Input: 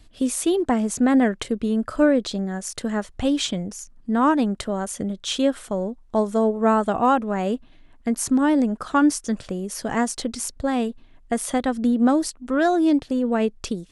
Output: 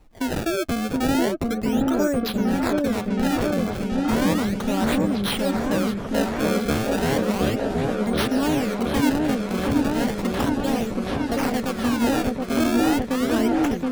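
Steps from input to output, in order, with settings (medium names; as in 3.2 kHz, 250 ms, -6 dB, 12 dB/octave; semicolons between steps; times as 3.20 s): recorder AGC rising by 7 dB/s; treble shelf 3.8 kHz +7 dB; in parallel at +1 dB: peak limiter -17.5 dBFS, peak gain reduction 11 dB; 6.30–6.99 s: on the sum: phase dispersion lows, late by 118 ms, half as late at 440 Hz; decimation with a swept rate 26×, swing 160% 0.34 Hz; on a send: delay with an opening low-pass 723 ms, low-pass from 750 Hz, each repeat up 1 oct, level 0 dB; on the sum: trim -9 dB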